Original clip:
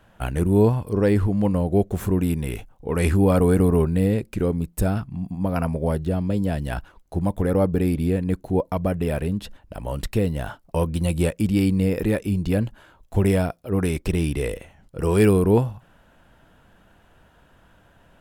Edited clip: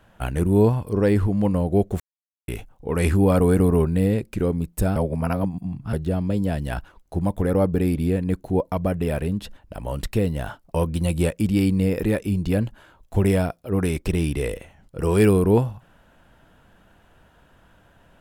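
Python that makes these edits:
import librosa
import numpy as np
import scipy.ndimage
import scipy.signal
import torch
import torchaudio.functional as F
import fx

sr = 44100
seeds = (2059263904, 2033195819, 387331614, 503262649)

y = fx.edit(x, sr, fx.silence(start_s=2.0, length_s=0.48),
    fx.reverse_span(start_s=4.96, length_s=0.97), tone=tone)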